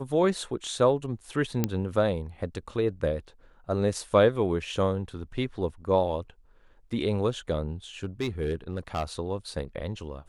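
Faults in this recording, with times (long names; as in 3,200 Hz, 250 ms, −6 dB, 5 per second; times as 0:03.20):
0:01.64: click −10 dBFS
0:08.03–0:09.04: clipping −23.5 dBFS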